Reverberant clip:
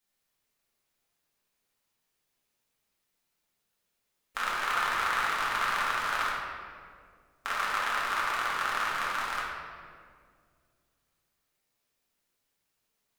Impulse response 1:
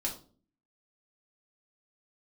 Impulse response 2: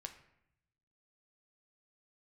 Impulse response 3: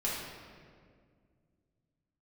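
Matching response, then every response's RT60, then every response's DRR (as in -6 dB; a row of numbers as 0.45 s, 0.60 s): 3; 0.40 s, 0.75 s, 2.0 s; -2.0 dB, 5.0 dB, -7.0 dB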